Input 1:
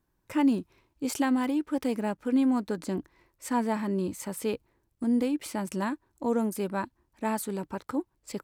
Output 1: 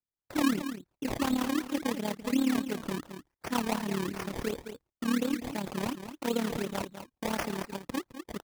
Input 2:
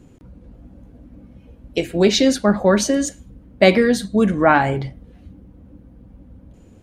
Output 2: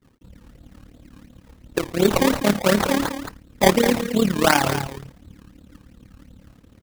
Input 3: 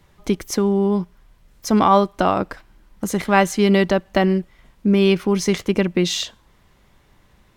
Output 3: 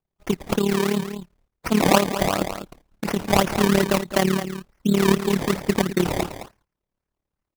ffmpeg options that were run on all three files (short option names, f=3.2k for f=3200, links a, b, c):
-af "agate=range=-26dB:threshold=-46dB:ratio=16:detection=peak,highshelf=f=8.3k:g=11.5,acrusher=samples=22:mix=1:aa=0.000001:lfo=1:lforange=22:lforate=2.8,aecho=1:1:209:0.316,tremolo=f=36:d=0.788"